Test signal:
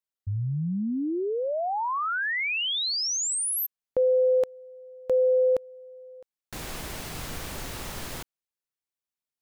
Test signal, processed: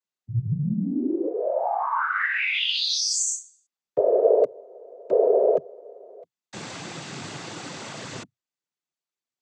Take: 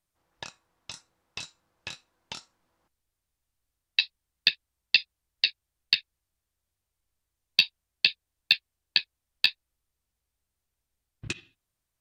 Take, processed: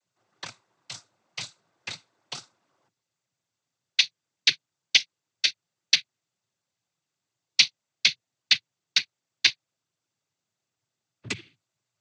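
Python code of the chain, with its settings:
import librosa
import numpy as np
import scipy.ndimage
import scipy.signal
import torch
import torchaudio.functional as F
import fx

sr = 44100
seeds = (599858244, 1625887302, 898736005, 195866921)

y = fx.noise_vocoder(x, sr, seeds[0], bands=16)
y = y * 10.0 ** (3.0 / 20.0)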